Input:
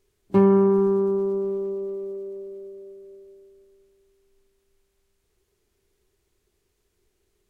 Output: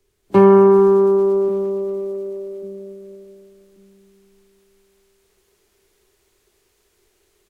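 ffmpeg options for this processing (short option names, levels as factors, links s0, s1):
-filter_complex "[0:a]acrossover=split=180|360[s0][s1][s2];[s1]aecho=1:1:1139|2278|3417:0.447|0.125|0.035[s3];[s2]dynaudnorm=f=220:g=3:m=2.82[s4];[s0][s3][s4]amix=inputs=3:normalize=0,volume=1.33"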